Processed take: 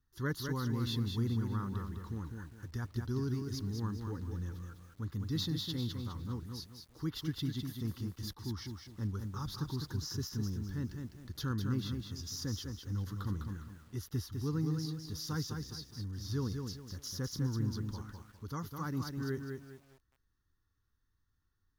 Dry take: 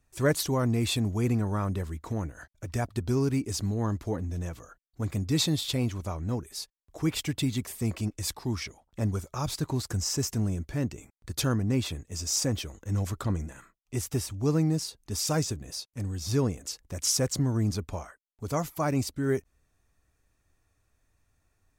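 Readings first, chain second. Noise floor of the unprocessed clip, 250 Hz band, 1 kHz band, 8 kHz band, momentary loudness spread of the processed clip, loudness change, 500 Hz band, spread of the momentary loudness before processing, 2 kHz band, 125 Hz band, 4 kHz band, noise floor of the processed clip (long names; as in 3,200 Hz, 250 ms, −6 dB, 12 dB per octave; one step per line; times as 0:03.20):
−74 dBFS, −8.0 dB, −9.5 dB, −15.5 dB, 10 LU, −8.5 dB, −13.0 dB, 10 LU, −9.0 dB, −6.5 dB, −8.5 dB, −78 dBFS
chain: de-essing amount 50%
phaser with its sweep stopped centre 2,400 Hz, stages 6
feedback echo at a low word length 204 ms, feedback 35%, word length 9 bits, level −5 dB
level −7.5 dB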